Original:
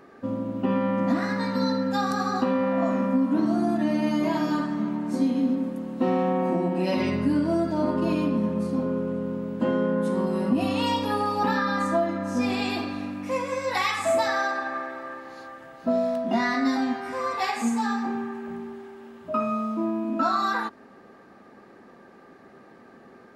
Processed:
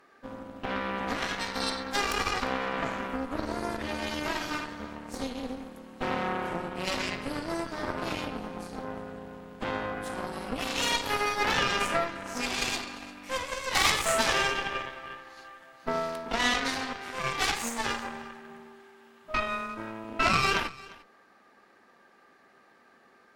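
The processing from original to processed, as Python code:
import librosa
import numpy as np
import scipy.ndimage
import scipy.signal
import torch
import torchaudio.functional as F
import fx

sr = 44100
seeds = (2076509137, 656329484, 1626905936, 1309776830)

p1 = fx.tilt_shelf(x, sr, db=-8.0, hz=670.0)
p2 = fx.cheby_harmonics(p1, sr, harmonics=(3, 6), levels_db=(-13, -16), full_scale_db=-7.0)
y = p2 + fx.echo_single(p2, sr, ms=349, db=-21.0, dry=0)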